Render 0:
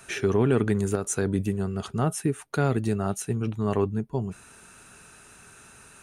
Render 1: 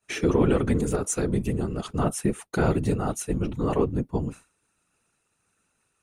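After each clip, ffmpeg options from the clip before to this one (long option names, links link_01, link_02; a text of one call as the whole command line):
ffmpeg -i in.wav -af "agate=range=-33dB:threshold=-36dB:ratio=3:detection=peak,bandreject=frequency=1600:width=9.4,afftfilt=real='hypot(re,im)*cos(2*PI*random(0))':imag='hypot(re,im)*sin(2*PI*random(1))':win_size=512:overlap=0.75,volume=7dB" out.wav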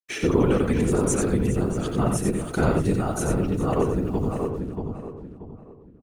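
ffmpeg -i in.wav -filter_complex "[0:a]asplit=2[link_01][link_02];[link_02]aecho=0:1:89|409:0.562|0.168[link_03];[link_01][link_03]amix=inputs=2:normalize=0,acrusher=bits=8:mix=0:aa=0.5,asplit=2[link_04][link_05];[link_05]adelay=632,lowpass=frequency=1800:poles=1,volume=-4.5dB,asplit=2[link_06][link_07];[link_07]adelay=632,lowpass=frequency=1800:poles=1,volume=0.33,asplit=2[link_08][link_09];[link_09]adelay=632,lowpass=frequency=1800:poles=1,volume=0.33,asplit=2[link_10][link_11];[link_11]adelay=632,lowpass=frequency=1800:poles=1,volume=0.33[link_12];[link_06][link_08][link_10][link_12]amix=inputs=4:normalize=0[link_13];[link_04][link_13]amix=inputs=2:normalize=0" out.wav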